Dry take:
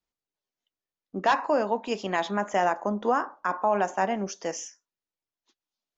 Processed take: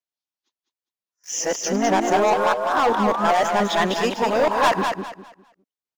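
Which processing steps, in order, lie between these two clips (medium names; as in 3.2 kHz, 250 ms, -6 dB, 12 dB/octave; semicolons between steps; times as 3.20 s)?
reverse the whole clip; high-pass 74 Hz 24 dB/octave; bass shelf 450 Hz -4 dB; waveshaping leveller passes 3; painted sound rise, 1.71–3.32 s, 240–1400 Hz -27 dBFS; on a send: feedback delay 202 ms, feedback 27%, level -5.5 dB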